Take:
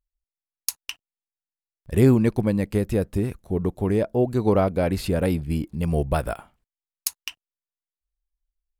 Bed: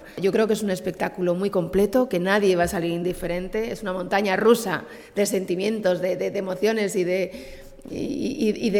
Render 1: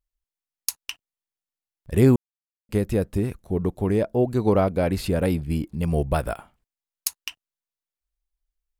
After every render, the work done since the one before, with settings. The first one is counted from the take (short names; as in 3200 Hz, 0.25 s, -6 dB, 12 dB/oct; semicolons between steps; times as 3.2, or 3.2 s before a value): 2.16–2.69 mute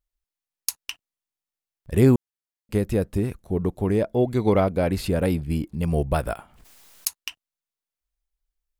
4.1–4.6 small resonant body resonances 2100/3400 Hz, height 15 dB, ringing for 25 ms; 6.3–7.2 backwards sustainer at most 60 dB/s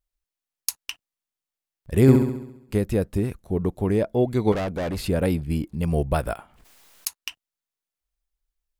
2.01–2.78 flutter echo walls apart 11.6 m, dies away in 0.78 s; 4.52–5.01 hard clip -24.5 dBFS; 6.36–7.22 tone controls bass -3 dB, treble -3 dB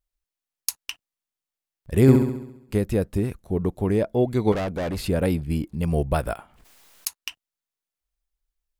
nothing audible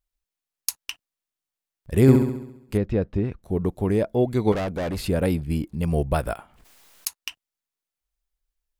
2.77–3.43 air absorption 210 m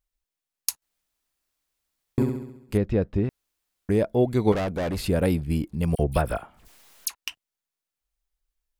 0.82–2.18 room tone; 3.29–3.89 room tone; 5.95–7.15 dispersion lows, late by 41 ms, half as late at 2400 Hz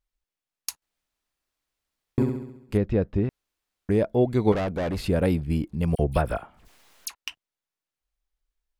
high shelf 6500 Hz -8.5 dB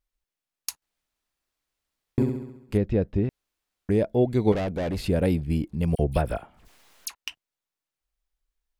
dynamic EQ 1200 Hz, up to -6 dB, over -46 dBFS, Q 1.6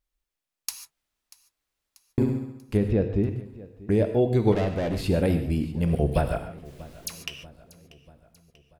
feedback echo 0.638 s, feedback 54%, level -20.5 dB; non-linear reverb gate 0.17 s flat, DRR 7 dB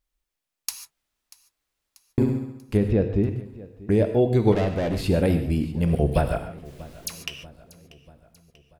gain +2 dB